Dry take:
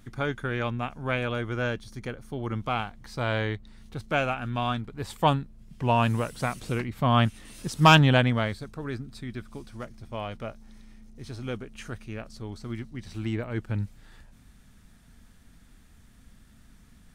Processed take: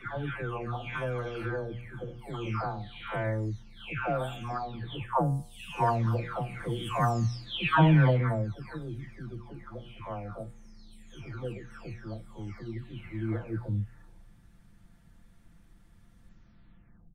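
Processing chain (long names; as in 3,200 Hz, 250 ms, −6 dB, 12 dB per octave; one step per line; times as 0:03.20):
every frequency bin delayed by itself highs early, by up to 853 ms
high-shelf EQ 2,600 Hz −10 dB
hum removal 120.2 Hz, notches 33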